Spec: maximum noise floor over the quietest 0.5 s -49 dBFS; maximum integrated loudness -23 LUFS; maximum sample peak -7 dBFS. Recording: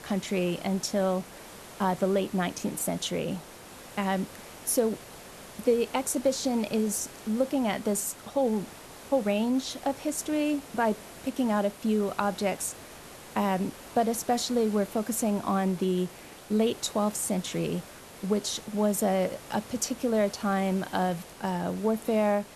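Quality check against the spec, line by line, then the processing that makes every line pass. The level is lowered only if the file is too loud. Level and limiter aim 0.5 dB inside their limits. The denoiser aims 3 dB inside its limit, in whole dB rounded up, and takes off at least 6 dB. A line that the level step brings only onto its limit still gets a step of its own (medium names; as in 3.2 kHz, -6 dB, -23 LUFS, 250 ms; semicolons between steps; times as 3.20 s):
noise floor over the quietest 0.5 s -46 dBFS: fail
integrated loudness -29.0 LUFS: pass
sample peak -11.5 dBFS: pass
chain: noise reduction 6 dB, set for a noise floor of -46 dBFS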